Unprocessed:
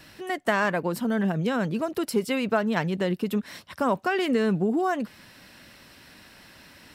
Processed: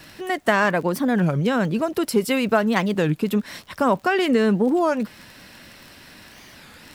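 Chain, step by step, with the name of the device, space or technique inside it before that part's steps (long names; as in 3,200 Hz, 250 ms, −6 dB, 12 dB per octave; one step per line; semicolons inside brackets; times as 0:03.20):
0:02.20–0:03.05: high-shelf EQ 11,000 Hz +9.5 dB
warped LP (wow of a warped record 33 1/3 rpm, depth 250 cents; surface crackle 24 per second −37 dBFS; pink noise bed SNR 39 dB)
level +5 dB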